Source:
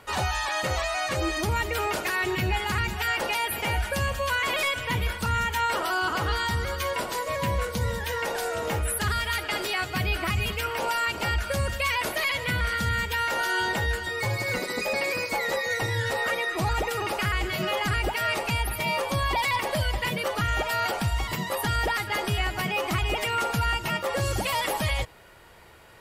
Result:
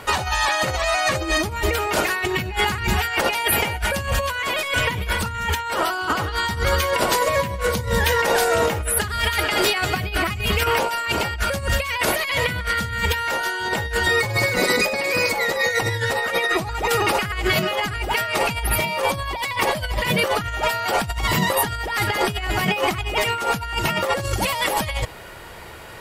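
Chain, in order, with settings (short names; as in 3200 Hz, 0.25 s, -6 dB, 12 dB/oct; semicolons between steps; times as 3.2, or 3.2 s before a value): negative-ratio compressor -30 dBFS, ratio -0.5; gain +9 dB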